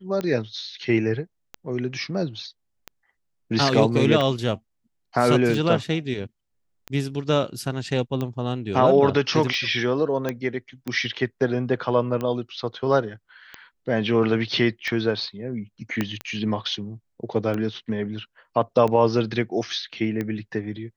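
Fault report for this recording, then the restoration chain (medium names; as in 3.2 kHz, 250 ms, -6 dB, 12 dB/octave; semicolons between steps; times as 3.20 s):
tick 45 rpm -16 dBFS
10.29 s: pop -12 dBFS
16.01 s: pop -10 dBFS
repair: de-click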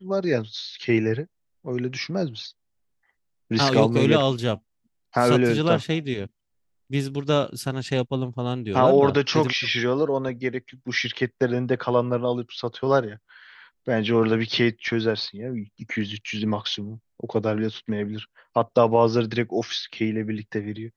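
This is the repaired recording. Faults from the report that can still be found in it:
16.01 s: pop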